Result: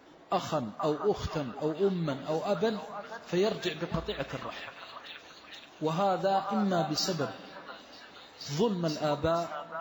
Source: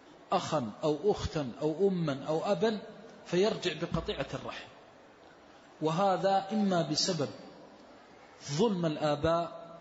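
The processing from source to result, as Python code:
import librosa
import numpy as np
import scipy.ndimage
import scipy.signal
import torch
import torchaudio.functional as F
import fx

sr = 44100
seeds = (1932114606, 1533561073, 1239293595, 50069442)

y = fx.echo_stepped(x, sr, ms=477, hz=1200.0, octaves=0.7, feedback_pct=70, wet_db=-2)
y = np.interp(np.arange(len(y)), np.arange(len(y))[::2], y[::2])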